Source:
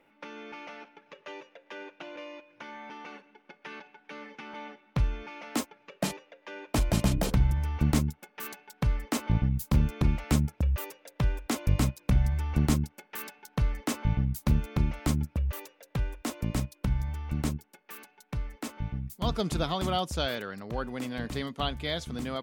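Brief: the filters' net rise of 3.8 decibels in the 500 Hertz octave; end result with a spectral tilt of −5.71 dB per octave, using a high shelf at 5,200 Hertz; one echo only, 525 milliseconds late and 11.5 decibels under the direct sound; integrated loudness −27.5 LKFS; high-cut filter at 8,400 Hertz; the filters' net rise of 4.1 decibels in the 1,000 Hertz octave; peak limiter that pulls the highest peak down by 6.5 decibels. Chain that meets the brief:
low-pass filter 8,400 Hz
parametric band 500 Hz +3.5 dB
parametric band 1,000 Hz +4 dB
high-shelf EQ 5,200 Hz +3.5 dB
brickwall limiter −18 dBFS
single-tap delay 525 ms −11.5 dB
level +4.5 dB

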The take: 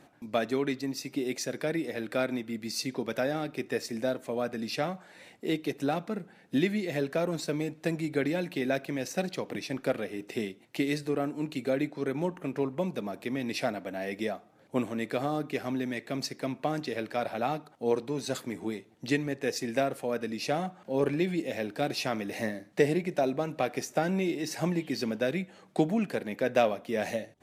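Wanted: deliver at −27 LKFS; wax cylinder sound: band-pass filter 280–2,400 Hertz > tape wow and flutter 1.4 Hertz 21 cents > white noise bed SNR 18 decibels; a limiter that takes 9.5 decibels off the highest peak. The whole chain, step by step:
brickwall limiter −20 dBFS
band-pass filter 280–2,400 Hz
tape wow and flutter 1.4 Hz 21 cents
white noise bed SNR 18 dB
level +8 dB

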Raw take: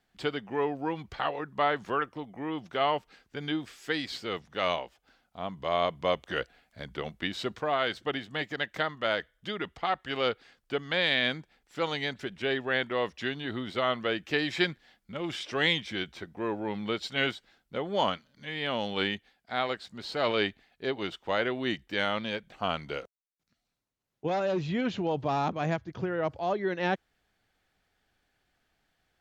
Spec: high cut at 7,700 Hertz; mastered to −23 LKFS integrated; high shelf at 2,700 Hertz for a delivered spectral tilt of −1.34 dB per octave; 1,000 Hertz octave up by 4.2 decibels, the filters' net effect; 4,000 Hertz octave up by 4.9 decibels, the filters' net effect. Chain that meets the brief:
low-pass filter 7,700 Hz
parametric band 1,000 Hz +5 dB
high-shelf EQ 2,700 Hz +3.5 dB
parametric band 4,000 Hz +3.5 dB
level +5.5 dB

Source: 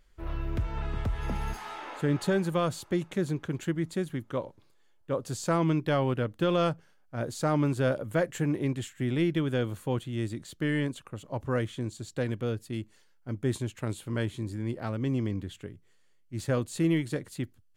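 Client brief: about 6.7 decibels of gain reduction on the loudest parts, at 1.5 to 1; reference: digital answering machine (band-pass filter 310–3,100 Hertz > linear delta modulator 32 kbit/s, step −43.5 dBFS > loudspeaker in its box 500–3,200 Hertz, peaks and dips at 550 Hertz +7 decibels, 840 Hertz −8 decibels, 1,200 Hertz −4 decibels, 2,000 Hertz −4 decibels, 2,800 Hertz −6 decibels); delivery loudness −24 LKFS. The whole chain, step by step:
downward compressor 1.5 to 1, threshold −41 dBFS
band-pass filter 310–3,100 Hz
linear delta modulator 32 kbit/s, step −43.5 dBFS
loudspeaker in its box 500–3,200 Hz, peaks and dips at 550 Hz +7 dB, 840 Hz −8 dB, 1,200 Hz −4 dB, 2,000 Hz −4 dB, 2,800 Hz −6 dB
level +18.5 dB

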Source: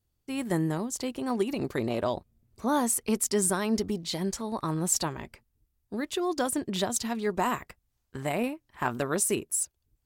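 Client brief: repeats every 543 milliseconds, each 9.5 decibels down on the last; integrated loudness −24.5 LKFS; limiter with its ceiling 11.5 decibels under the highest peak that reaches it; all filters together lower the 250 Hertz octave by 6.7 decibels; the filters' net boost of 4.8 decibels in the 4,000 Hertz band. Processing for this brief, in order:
parametric band 250 Hz −9 dB
parametric band 4,000 Hz +6 dB
brickwall limiter −22.5 dBFS
repeating echo 543 ms, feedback 33%, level −9.5 dB
level +9.5 dB

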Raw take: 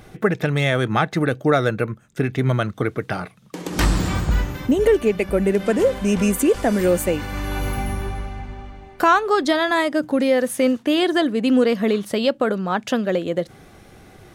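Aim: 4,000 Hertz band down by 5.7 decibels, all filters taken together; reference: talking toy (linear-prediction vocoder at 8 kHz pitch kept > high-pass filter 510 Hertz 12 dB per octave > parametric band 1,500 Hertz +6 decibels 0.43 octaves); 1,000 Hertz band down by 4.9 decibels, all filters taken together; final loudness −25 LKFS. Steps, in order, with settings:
parametric band 1,000 Hz −8.5 dB
parametric band 4,000 Hz −7.5 dB
linear-prediction vocoder at 8 kHz pitch kept
high-pass filter 510 Hz 12 dB per octave
parametric band 1,500 Hz +6 dB 0.43 octaves
level +2.5 dB

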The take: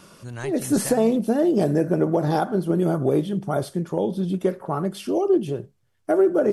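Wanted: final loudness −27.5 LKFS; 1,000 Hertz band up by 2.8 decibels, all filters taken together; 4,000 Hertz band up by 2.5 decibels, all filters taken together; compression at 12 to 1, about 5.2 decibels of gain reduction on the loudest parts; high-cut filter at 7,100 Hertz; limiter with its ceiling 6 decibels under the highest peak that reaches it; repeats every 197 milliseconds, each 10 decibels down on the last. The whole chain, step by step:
low-pass filter 7,100 Hz
parametric band 1,000 Hz +4 dB
parametric band 4,000 Hz +3.5 dB
downward compressor 12 to 1, threshold −19 dBFS
brickwall limiter −16 dBFS
repeating echo 197 ms, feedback 32%, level −10 dB
level −1 dB

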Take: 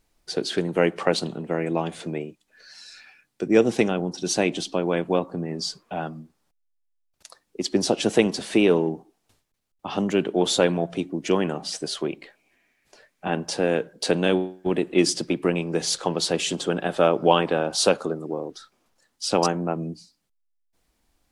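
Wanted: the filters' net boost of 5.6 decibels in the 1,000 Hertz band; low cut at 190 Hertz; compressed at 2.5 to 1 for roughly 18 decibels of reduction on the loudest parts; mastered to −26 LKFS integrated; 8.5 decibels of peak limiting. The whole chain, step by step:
high-pass filter 190 Hz
parametric band 1,000 Hz +7.5 dB
downward compressor 2.5 to 1, threshold −36 dBFS
level +11 dB
brickwall limiter −12.5 dBFS

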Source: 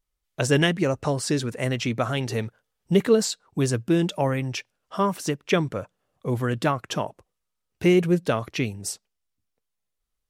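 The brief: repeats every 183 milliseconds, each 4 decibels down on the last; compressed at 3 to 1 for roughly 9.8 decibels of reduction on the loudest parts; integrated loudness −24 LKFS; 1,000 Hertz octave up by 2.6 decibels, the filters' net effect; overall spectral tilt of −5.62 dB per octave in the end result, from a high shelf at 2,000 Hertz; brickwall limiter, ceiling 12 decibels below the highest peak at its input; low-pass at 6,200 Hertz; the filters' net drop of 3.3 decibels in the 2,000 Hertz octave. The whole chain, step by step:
low-pass filter 6,200 Hz
parametric band 1,000 Hz +5 dB
high-shelf EQ 2,000 Hz −4 dB
parametric band 2,000 Hz −3.5 dB
downward compressor 3 to 1, threshold −27 dBFS
brickwall limiter −25.5 dBFS
repeating echo 183 ms, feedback 63%, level −4 dB
level +10 dB

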